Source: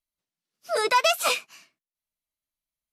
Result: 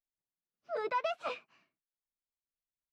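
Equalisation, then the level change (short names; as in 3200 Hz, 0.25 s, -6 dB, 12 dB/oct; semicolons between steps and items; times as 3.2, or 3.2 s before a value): tape spacing loss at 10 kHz 38 dB; -8.0 dB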